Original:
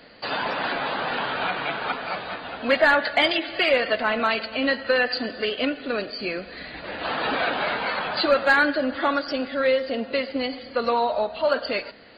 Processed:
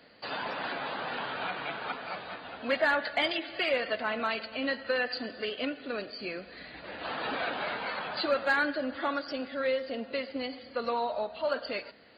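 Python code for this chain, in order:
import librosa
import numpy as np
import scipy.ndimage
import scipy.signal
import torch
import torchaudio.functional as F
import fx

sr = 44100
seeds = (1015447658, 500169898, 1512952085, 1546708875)

y = scipy.signal.sosfilt(scipy.signal.butter(2, 53.0, 'highpass', fs=sr, output='sos'), x)
y = y * librosa.db_to_amplitude(-8.5)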